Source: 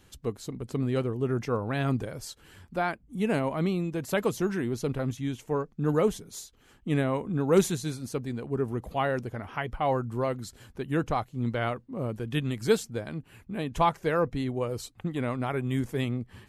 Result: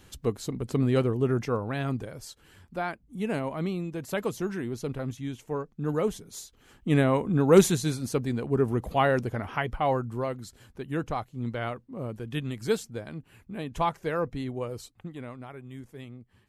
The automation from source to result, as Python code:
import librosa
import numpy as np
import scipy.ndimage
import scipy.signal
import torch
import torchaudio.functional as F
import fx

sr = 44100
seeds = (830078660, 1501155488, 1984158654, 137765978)

y = fx.gain(x, sr, db=fx.line((1.15, 4.0), (1.9, -3.0), (6.0, -3.0), (7.04, 4.5), (9.44, 4.5), (10.37, -3.0), (14.66, -3.0), (15.6, -14.0)))